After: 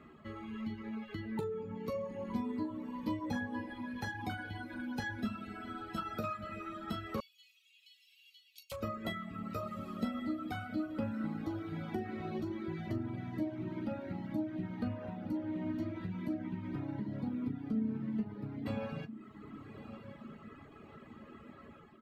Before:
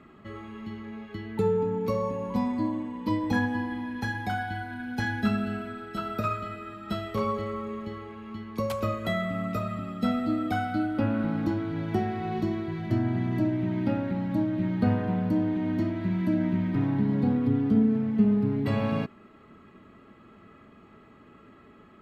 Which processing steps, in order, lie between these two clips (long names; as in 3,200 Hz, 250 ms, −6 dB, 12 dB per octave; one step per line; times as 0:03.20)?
downward compressor 3 to 1, threshold −37 dBFS, peak gain reduction 15 dB
feedback delay with all-pass diffusion 1,197 ms, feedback 41%, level −11 dB
automatic gain control gain up to 4.5 dB
on a send: ambience of single reflections 13 ms −6 dB, 40 ms −12.5 dB
on the sum: reverb reduction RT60 1.1 s
0:07.20–0:08.72: Chebyshev high-pass filter 2,700 Hz, order 5
level −4.5 dB